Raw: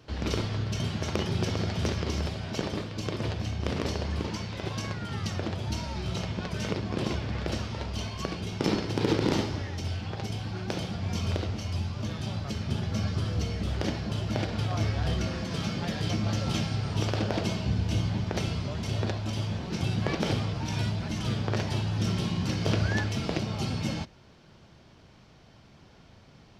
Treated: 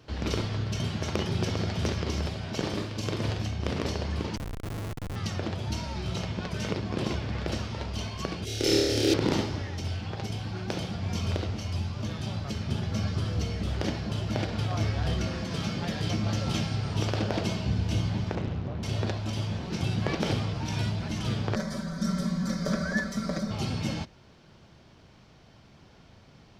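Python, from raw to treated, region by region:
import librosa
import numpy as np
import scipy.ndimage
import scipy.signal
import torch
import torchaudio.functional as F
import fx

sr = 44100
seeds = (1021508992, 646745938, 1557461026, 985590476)

y = fx.chain(x, sr, fx.high_shelf(hz=5400.0, db=4.0),
    fx.doubler(ms=46.0, db=-6.0), at=(2.59, 3.47))
y = fx.chain(y, sr, fx.peak_eq(hz=63.0, db=2.5, octaves=0.64),
    fx.schmitt(flips_db=-29.0), at=(4.36, 5.16))
y = fx.chain(y, sr, fx.high_shelf(hz=4600.0, db=9.5),
    fx.fixed_phaser(hz=420.0, stages=4),
    fx.room_flutter(wall_m=4.7, rt60_s=1.3), at=(8.45, 9.14))
y = fx.chain(y, sr, fx.spacing_loss(db_at_10k=33),
    fx.doppler_dist(depth_ms=0.77), at=(18.35, 18.83))
y = fx.chain(y, sr, fx.fixed_phaser(hz=560.0, stages=8),
    fx.comb(ms=5.2, depth=0.87), at=(21.55, 23.51))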